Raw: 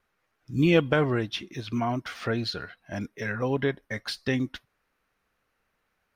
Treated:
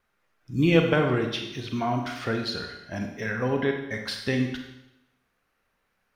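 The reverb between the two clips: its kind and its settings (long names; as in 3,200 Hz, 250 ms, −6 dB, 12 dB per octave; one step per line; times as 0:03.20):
four-comb reverb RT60 0.87 s, combs from 32 ms, DRR 3.5 dB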